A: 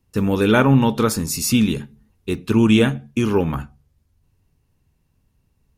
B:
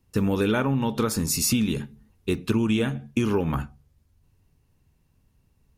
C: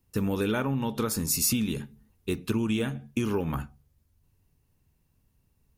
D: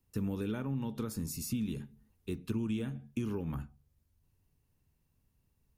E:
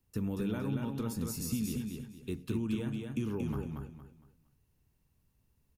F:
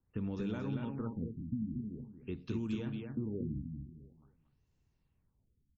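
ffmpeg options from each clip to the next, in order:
-af "acompressor=threshold=-19dB:ratio=12"
-af "highshelf=f=11k:g=10.5,volume=-4.5dB"
-filter_complex "[0:a]acrossover=split=330[a][b];[b]acompressor=threshold=-53dB:ratio=1.5[c];[a][c]amix=inputs=2:normalize=0,volume=-5.5dB"
-af "aecho=1:1:231|462|693|924:0.631|0.189|0.0568|0.017"
-af "afftfilt=real='re*lt(b*sr/1024,300*pow(7900/300,0.5+0.5*sin(2*PI*0.47*pts/sr)))':imag='im*lt(b*sr/1024,300*pow(7900/300,0.5+0.5*sin(2*PI*0.47*pts/sr)))':win_size=1024:overlap=0.75,volume=-3dB"

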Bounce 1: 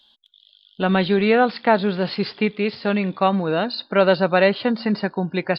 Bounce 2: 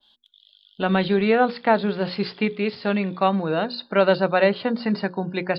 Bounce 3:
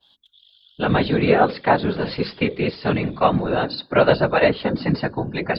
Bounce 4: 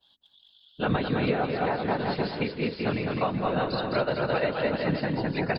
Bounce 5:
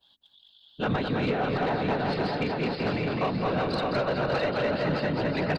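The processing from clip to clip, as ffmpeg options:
-af "bandreject=f=60:t=h:w=6,bandreject=f=120:t=h:w=6,bandreject=f=180:t=h:w=6,bandreject=f=240:t=h:w=6,bandreject=f=300:t=h:w=6,bandreject=f=360:t=h:w=6,bandreject=f=420:t=h:w=6,bandreject=f=480:t=h:w=6,bandreject=f=540:t=h:w=6,adynamicequalizer=threshold=0.0282:dfrequency=1800:dqfactor=0.7:tfrequency=1800:tqfactor=0.7:attack=5:release=100:ratio=0.375:range=2:mode=cutabove:tftype=highshelf,volume=-1.5dB"
-af "afftfilt=real='hypot(re,im)*cos(2*PI*random(0))':imag='hypot(re,im)*sin(2*PI*random(1))':win_size=512:overlap=0.75,volume=8dB"
-af "aecho=1:1:210|378|512.4|619.9|705.9:0.631|0.398|0.251|0.158|0.1,alimiter=limit=-10dB:level=0:latency=1:release=422,volume=-5.5dB"
-af "aecho=1:1:613|1226|1839|2452:0.531|0.191|0.0688|0.0248,asoftclip=type=tanh:threshold=-20.5dB,volume=1dB"

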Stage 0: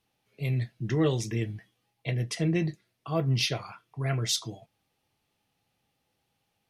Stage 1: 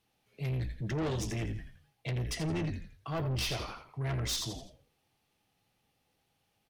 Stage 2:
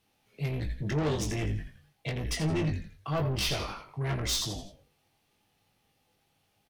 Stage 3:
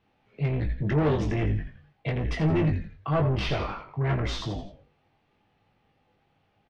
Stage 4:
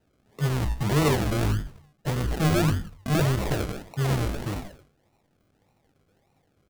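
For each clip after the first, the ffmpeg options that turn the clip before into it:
-filter_complex "[0:a]asplit=5[a][b][c][d][e];[b]adelay=84,afreqshift=-63,volume=-9dB[f];[c]adelay=168,afreqshift=-126,volume=-17.6dB[g];[d]adelay=252,afreqshift=-189,volume=-26.3dB[h];[e]adelay=336,afreqshift=-252,volume=-34.9dB[i];[a][f][g][h][i]amix=inputs=5:normalize=0,asoftclip=type=tanh:threshold=-30dB"
-filter_complex "[0:a]asplit=2[a][b];[b]adelay=20,volume=-5.5dB[c];[a][c]amix=inputs=2:normalize=0,volume=3dB"
-af "lowpass=2.2k,volume=5.5dB"
-af "acrusher=samples=38:mix=1:aa=0.000001:lfo=1:lforange=22.8:lforate=1.7,volume=1.5dB"

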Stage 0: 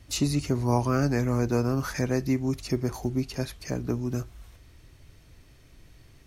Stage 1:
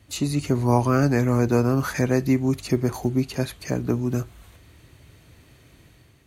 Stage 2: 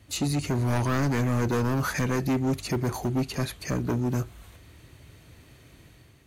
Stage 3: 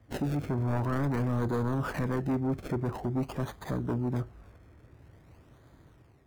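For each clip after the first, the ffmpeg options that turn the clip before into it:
-af "highpass=78,equalizer=f=5.4k:t=o:w=0.23:g=-9.5,dynaudnorm=f=110:g=7:m=5.5dB"
-af "volume=21.5dB,asoftclip=hard,volume=-21.5dB"
-filter_complex "[0:a]acrossover=split=1900[a][b];[b]acrusher=samples=31:mix=1:aa=0.000001:lfo=1:lforange=31:lforate=0.48[c];[a][c]amix=inputs=2:normalize=0,volume=-4dB" -ar 48000 -c:a libvorbis -b:a 192k

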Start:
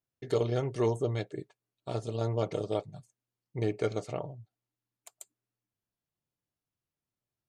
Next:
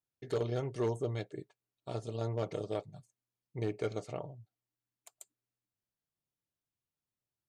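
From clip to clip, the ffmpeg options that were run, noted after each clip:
-af "asoftclip=type=hard:threshold=-21dB,volume=-4.5dB"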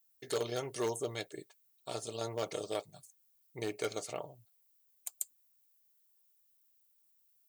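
-af "aemphasis=mode=production:type=riaa,volume=2dB"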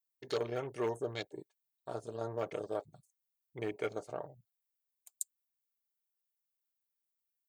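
-af "afwtdn=0.00447"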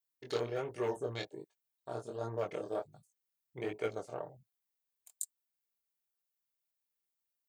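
-af "flanger=delay=18:depth=7.3:speed=1.3,volume=3dB"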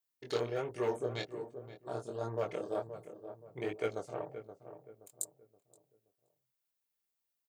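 -filter_complex "[0:a]asplit=2[a][b];[b]adelay=524,lowpass=f=1k:p=1,volume=-10dB,asplit=2[c][d];[d]adelay=524,lowpass=f=1k:p=1,volume=0.39,asplit=2[e][f];[f]adelay=524,lowpass=f=1k:p=1,volume=0.39,asplit=2[g][h];[h]adelay=524,lowpass=f=1k:p=1,volume=0.39[i];[a][c][e][g][i]amix=inputs=5:normalize=0,volume=1dB"

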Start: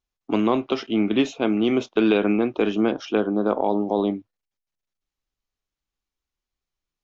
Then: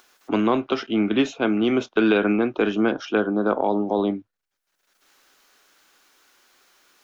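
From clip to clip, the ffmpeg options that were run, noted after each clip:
-filter_complex "[0:a]acrossover=split=260[a][b];[b]acompressor=mode=upward:threshold=-36dB:ratio=2.5[c];[a][c]amix=inputs=2:normalize=0,equalizer=f=1.5k:t=o:w=0.46:g=7.5"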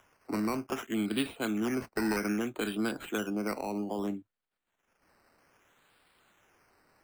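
-filter_complex "[0:a]acrossover=split=250|1100[a][b][c];[b]acompressor=threshold=-29dB:ratio=6[d];[c]acrusher=samples=10:mix=1:aa=0.000001:lfo=1:lforange=6:lforate=0.62[e];[a][d][e]amix=inputs=3:normalize=0,volume=-7dB"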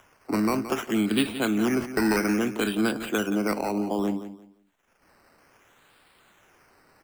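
-af "aecho=1:1:173|346|519:0.251|0.0578|0.0133,volume=7dB"

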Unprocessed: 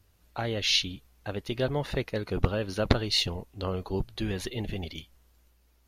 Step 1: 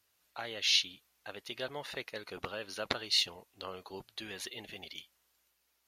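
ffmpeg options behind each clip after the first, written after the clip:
-af "highpass=f=1.4k:p=1,volume=-2dB"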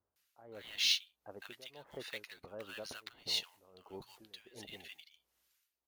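-filter_complex "[0:a]tremolo=f=1.5:d=0.89,acrusher=bits=4:mode=log:mix=0:aa=0.000001,acrossover=split=1100[a][b];[b]adelay=160[c];[a][c]amix=inputs=2:normalize=0,volume=-2dB"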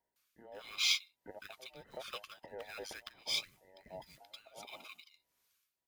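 -af "afftfilt=real='real(if(between(b,1,1008),(2*floor((b-1)/48)+1)*48-b,b),0)':imag='imag(if(between(b,1,1008),(2*floor((b-1)/48)+1)*48-b,b),0)*if(between(b,1,1008),-1,1)':win_size=2048:overlap=0.75"

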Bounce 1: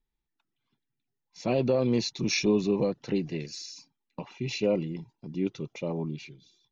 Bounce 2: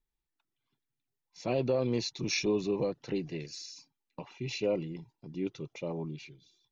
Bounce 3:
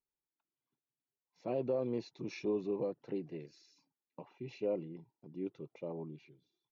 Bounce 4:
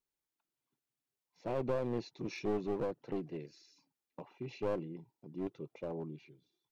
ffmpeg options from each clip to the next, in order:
-af "equalizer=f=210:w=3.2:g=-6,volume=-3.5dB"
-af "bandpass=f=450:t=q:w=0.54:csg=0,volume=-4.5dB"
-af "aeval=exprs='clip(val(0),-1,0.0119)':c=same,volume=2dB"

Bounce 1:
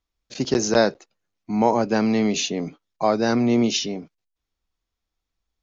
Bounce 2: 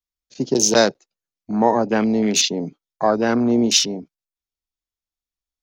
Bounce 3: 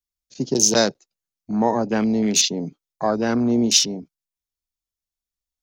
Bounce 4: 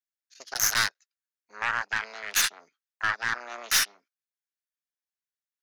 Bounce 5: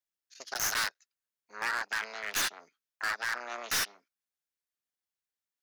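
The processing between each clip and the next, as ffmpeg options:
-filter_complex "[0:a]highshelf=f=3.8k:g=11.5,acrossover=split=120|1200[a][b][c];[a]acompressor=threshold=-46dB:ratio=6[d];[d][b][c]amix=inputs=3:normalize=0,afwtdn=0.0447,volume=2dB"
-af "bass=f=250:g=5,treble=f=4k:g=6,volume=-4dB"
-af "aeval=exprs='0.891*(cos(1*acos(clip(val(0)/0.891,-1,1)))-cos(1*PI/2))+0.0501*(cos(7*acos(clip(val(0)/0.891,-1,1)))-cos(7*PI/2))+0.178*(cos(8*acos(clip(val(0)/0.891,-1,1)))-cos(8*PI/2))':c=same,highpass=f=1.6k:t=q:w=3.5,aeval=exprs='(tanh(3.55*val(0)+0.25)-tanh(0.25))/3.55':c=same,volume=-4.5dB"
-af "asoftclip=type=hard:threshold=-27dB"

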